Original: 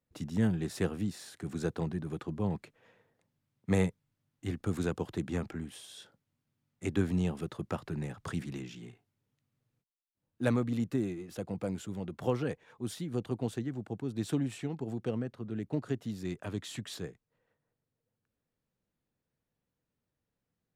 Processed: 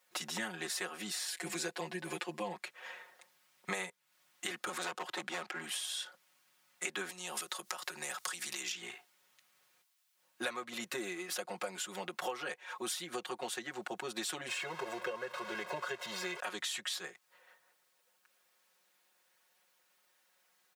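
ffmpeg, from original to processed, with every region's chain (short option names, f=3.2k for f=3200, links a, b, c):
-filter_complex "[0:a]asettb=1/sr,asplit=3[a][b][c];[a]atrim=end=1.274[d];[b]atrim=start=1.27:end=2.53,asetpts=PTS-STARTPTS,afade=t=in:d=0.004:c=qsin,afade=t=out:st=1.256:d=0.004:c=qsin,equalizer=f=1.3k:t=o:w=0.37:g=-8.5,aecho=1:1:5.9:0.96,atrim=end_sample=55566[e];[c]atrim=start=2.526[f];[d][e]acrossfade=d=0.004:c1=hsin:c2=qsin[g];[g][f]acrossfade=d=0.004:c1=qsin:c2=hsin,asettb=1/sr,asplit=3[h][i][j];[h]atrim=end=4.694[k];[i]atrim=start=4.69:end=5.64,asetpts=PTS-STARTPTS,afade=t=in:d=0.004:c=qsin,afade=t=out:st=0.946:d=0.004:c=qsin,highshelf=f=6.9k:g=-6.5,asoftclip=type=hard:threshold=-31dB[l];[j]atrim=start=5.636[m];[k][l]acrossfade=d=0.004:c1=hsin:c2=qsin[n];[n][m]acrossfade=d=0.004:c1=qsin:c2=hsin,asettb=1/sr,asplit=3[o][p][q];[o]atrim=end=7.094[r];[p]atrim=start=7.09:end=8.72,asetpts=PTS-STARTPTS,afade=t=in:d=0.004:c=qsin,afade=t=out:st=1.626:d=0.004:c=qsin,bass=f=250:g=-2,treble=f=4k:g=11,acompressor=threshold=-40dB:ratio=8:attack=3.2:release=140:knee=1:detection=peak[s];[q]atrim=start=8.716[t];[r][s]acrossfade=d=0.004:c1=hsin:c2=qsin[u];[u][t]acrossfade=d=0.004:c1=qsin:c2=hsin,asettb=1/sr,asplit=3[v][w][x];[v]atrim=end=14.484[y];[w]atrim=start=14.48:end=16.4,asetpts=PTS-STARTPTS,afade=t=in:d=0.004:c=qsin,afade=t=out:st=1.916:d=0.004:c=qsin,aeval=exprs='val(0)+0.5*0.00668*sgn(val(0))':c=same,aemphasis=mode=reproduction:type=75kf,aecho=1:1:1.9:0.8,atrim=end_sample=84672[z];[x]atrim=start=16.396[aa];[y][z]acrossfade=d=0.004:c1=hsin:c2=qsin[ab];[ab][aa]acrossfade=d=0.004:c1=qsin:c2=hsin,highpass=960,aecho=1:1:5.5:1,acompressor=threshold=-54dB:ratio=6,volume=17dB"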